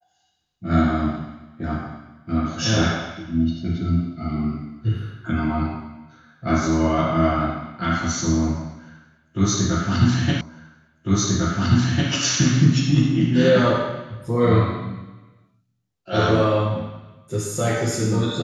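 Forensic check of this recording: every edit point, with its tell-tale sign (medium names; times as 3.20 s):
10.41 s: repeat of the last 1.7 s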